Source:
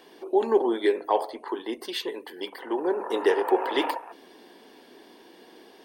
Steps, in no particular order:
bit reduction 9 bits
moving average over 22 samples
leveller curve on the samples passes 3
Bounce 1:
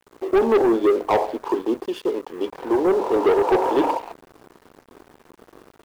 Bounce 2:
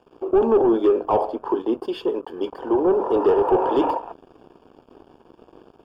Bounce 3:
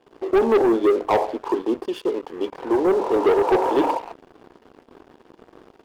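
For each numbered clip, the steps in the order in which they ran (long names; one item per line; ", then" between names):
moving average, then leveller curve on the samples, then bit reduction
leveller curve on the samples, then bit reduction, then moving average
bit reduction, then moving average, then leveller curve on the samples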